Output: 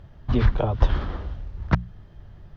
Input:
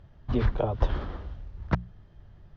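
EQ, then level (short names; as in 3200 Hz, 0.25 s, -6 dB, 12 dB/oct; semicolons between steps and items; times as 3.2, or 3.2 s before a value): dynamic EQ 490 Hz, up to -5 dB, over -41 dBFS, Q 0.74; +6.5 dB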